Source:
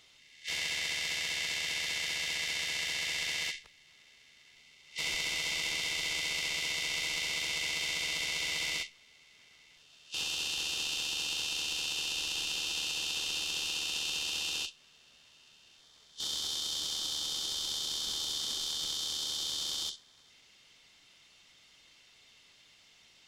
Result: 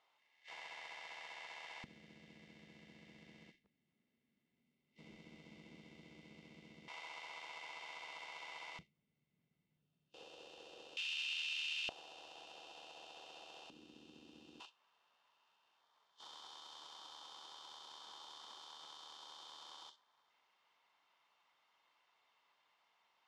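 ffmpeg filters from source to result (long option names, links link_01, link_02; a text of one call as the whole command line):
ffmpeg -i in.wav -af "asetnsamples=nb_out_samples=441:pad=0,asendcmd='1.84 bandpass f 220;6.88 bandpass f 920;8.79 bandpass f 170;10.14 bandpass f 530;10.97 bandpass f 2400;11.89 bandpass f 680;13.7 bandpass f 260;14.6 bandpass f 970',bandpass=frequency=890:width_type=q:width=3.1:csg=0" out.wav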